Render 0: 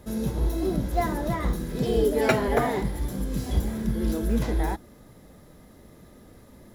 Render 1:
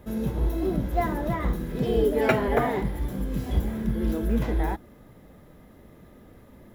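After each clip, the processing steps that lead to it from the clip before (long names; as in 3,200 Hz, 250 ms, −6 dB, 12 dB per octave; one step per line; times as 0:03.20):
flat-topped bell 6,600 Hz −8.5 dB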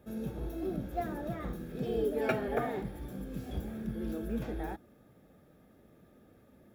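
notch comb filter 1,000 Hz
level −8.5 dB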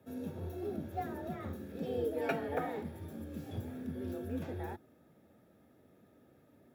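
frequency shifter +33 Hz
level −3.5 dB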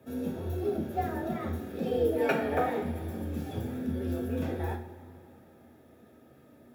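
coupled-rooms reverb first 0.42 s, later 2.9 s, from −16 dB, DRR 2 dB
level +5.5 dB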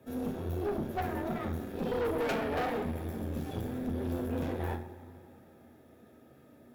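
tube saturation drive 31 dB, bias 0.7
level +3 dB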